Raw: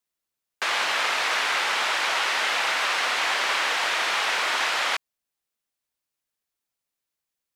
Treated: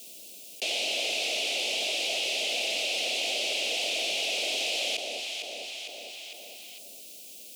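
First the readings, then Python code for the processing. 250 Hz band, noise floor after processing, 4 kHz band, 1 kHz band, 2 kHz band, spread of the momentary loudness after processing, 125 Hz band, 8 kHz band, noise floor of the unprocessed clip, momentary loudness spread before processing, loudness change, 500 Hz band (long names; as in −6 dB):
−0.5 dB, −46 dBFS, −0.5 dB, −16.0 dB, −8.5 dB, 16 LU, can't be measured, −0.5 dB, below −85 dBFS, 2 LU, −5.0 dB, −0.5 dB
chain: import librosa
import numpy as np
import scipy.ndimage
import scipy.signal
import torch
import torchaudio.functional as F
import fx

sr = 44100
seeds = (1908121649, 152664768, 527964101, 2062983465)

p1 = scipy.signal.sosfilt(scipy.signal.ellip(3, 1.0, 50, [660.0, 2600.0], 'bandstop', fs=sr, output='sos'), x)
p2 = 10.0 ** (-32.0 / 20.0) * np.tanh(p1 / 10.0 ** (-32.0 / 20.0))
p3 = p1 + (p2 * librosa.db_to_amplitude(-2.0))
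p4 = scipy.signal.sosfilt(scipy.signal.butter(6, 190.0, 'highpass', fs=sr, output='sos'), p3)
p5 = fx.peak_eq(p4, sr, hz=13000.0, db=-3.0, octaves=0.25)
p6 = p5 + fx.echo_alternate(p5, sr, ms=227, hz=810.0, feedback_pct=51, wet_db=-12.5, dry=0)
p7 = fx.env_flatten(p6, sr, amount_pct=70)
y = p7 * librosa.db_to_amplitude(-4.0)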